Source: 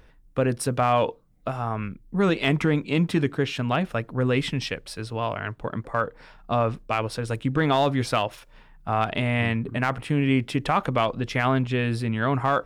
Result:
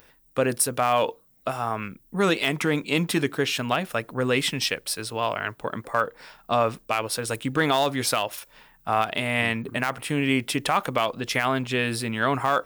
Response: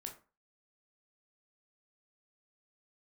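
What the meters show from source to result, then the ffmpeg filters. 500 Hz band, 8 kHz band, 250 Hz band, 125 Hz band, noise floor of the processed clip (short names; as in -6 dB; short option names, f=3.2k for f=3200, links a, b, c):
0.0 dB, +10.5 dB, -2.5 dB, -6.5 dB, -59 dBFS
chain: -af "aemphasis=mode=production:type=bsi,alimiter=limit=-11.5dB:level=0:latency=1:release=294,volume=2.5dB"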